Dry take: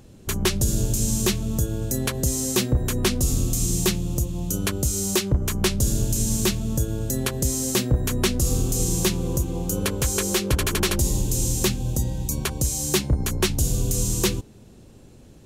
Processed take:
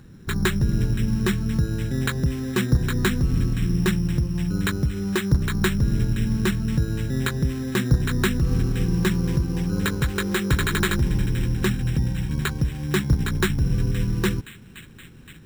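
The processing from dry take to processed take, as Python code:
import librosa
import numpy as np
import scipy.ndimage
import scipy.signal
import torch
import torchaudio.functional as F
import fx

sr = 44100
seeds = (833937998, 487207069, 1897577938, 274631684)

y = fx.graphic_eq_15(x, sr, hz=(160, 630, 1600), db=(7, -11, 10))
y = fx.echo_wet_highpass(y, sr, ms=520, feedback_pct=68, hz=3100.0, wet_db=-5.5)
y = np.repeat(scipy.signal.resample_poly(y, 1, 8), 8)[:len(y)]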